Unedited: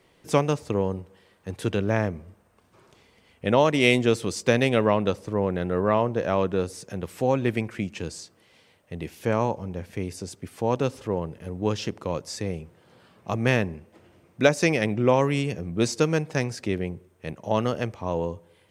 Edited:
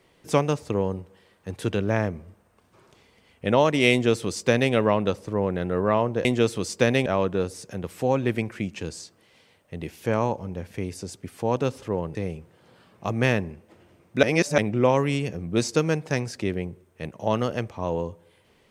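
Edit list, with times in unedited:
0:03.92–0:04.73: duplicate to 0:06.25
0:11.34–0:12.39: remove
0:14.47–0:14.82: reverse

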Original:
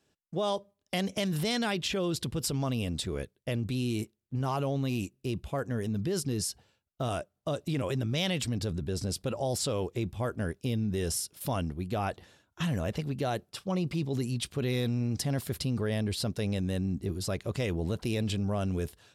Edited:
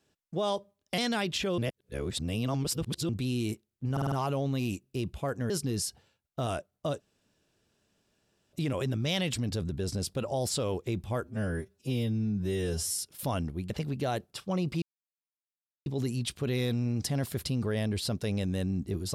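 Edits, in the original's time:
0:00.98–0:01.48: remove
0:02.08–0:03.59: reverse
0:04.42: stutter 0.05 s, 5 plays
0:05.80–0:06.12: remove
0:07.62: splice in room tone 1.53 s
0:10.33–0:11.20: time-stretch 2×
0:11.92–0:12.89: remove
0:14.01: splice in silence 1.04 s

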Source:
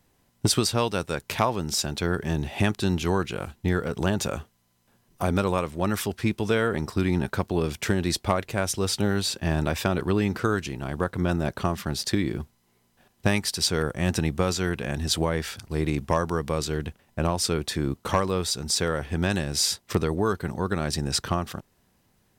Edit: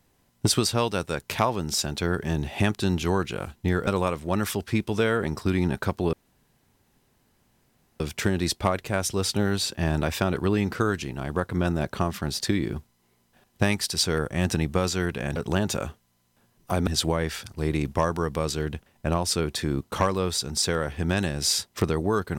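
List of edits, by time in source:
0:03.87–0:05.38: move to 0:15.00
0:07.64: splice in room tone 1.87 s

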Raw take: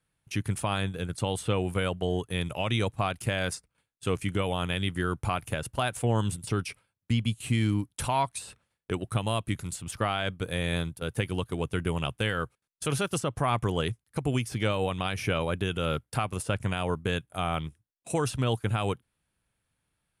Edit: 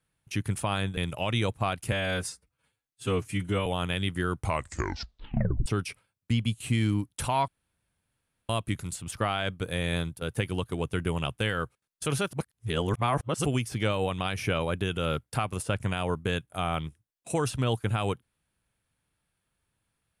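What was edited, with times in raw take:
0:00.97–0:02.35: remove
0:03.30–0:04.46: time-stretch 1.5×
0:05.18: tape stop 1.28 s
0:08.28–0:09.29: fill with room tone
0:13.13–0:14.25: reverse

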